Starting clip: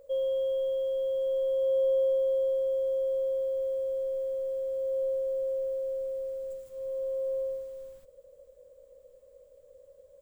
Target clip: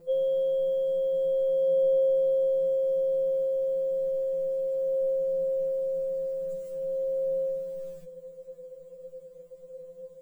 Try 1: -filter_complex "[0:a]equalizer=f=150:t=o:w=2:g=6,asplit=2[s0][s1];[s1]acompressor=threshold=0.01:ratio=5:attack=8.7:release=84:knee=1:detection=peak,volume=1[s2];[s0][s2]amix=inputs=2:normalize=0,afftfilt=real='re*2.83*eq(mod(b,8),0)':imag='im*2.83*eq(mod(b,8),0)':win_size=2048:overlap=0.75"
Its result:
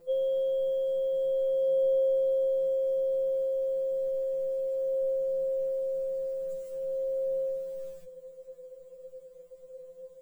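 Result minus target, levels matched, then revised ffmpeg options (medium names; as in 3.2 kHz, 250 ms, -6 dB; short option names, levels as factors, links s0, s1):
125 Hz band -6.5 dB
-filter_complex "[0:a]equalizer=f=150:t=o:w=2:g=16,asplit=2[s0][s1];[s1]acompressor=threshold=0.01:ratio=5:attack=8.7:release=84:knee=1:detection=peak,volume=1[s2];[s0][s2]amix=inputs=2:normalize=0,afftfilt=real='re*2.83*eq(mod(b,8),0)':imag='im*2.83*eq(mod(b,8),0)':win_size=2048:overlap=0.75"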